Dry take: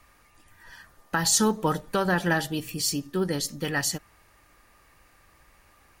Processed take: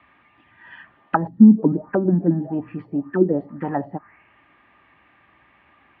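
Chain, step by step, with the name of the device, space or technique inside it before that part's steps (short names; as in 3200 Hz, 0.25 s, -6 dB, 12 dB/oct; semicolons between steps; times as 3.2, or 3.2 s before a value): envelope filter bass rig (envelope low-pass 230–3600 Hz down, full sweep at -19.5 dBFS; speaker cabinet 82–2200 Hz, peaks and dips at 89 Hz -9 dB, 140 Hz -4 dB, 270 Hz +3 dB, 490 Hz -9 dB, 1400 Hz -4 dB); gain +4.5 dB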